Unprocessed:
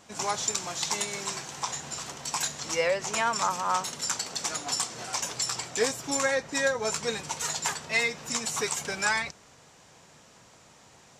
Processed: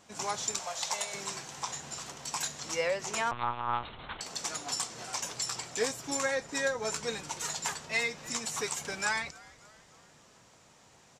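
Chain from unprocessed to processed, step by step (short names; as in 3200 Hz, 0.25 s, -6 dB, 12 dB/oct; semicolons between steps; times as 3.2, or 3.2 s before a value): 0.59–1.14 resonant low shelf 440 Hz -9 dB, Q 3; frequency-shifting echo 0.293 s, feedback 55%, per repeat -120 Hz, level -22.5 dB; 3.31–4.21 monotone LPC vocoder at 8 kHz 120 Hz; gain -4.5 dB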